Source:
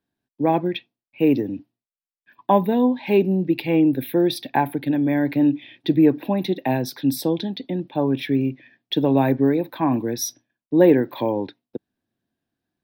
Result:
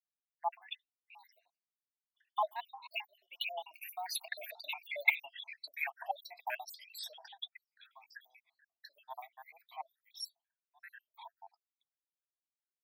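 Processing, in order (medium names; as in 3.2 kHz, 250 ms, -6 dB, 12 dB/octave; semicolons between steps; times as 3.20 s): random holes in the spectrogram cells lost 75%; Doppler pass-by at 5.00 s, 17 m/s, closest 7.2 m; dynamic bell 2.2 kHz, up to +3 dB, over -54 dBFS, Q 1.7; rippled Chebyshev high-pass 670 Hz, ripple 3 dB; Shepard-style flanger rising 1.9 Hz; trim +13.5 dB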